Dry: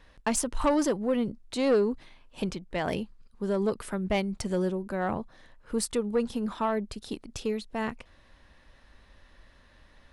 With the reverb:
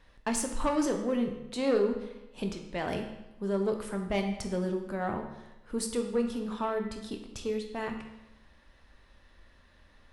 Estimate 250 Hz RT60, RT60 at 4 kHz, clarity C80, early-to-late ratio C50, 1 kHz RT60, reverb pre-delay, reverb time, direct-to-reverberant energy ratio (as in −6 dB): 1.0 s, 0.85 s, 9.0 dB, 7.0 dB, 0.95 s, 14 ms, 0.95 s, 4.0 dB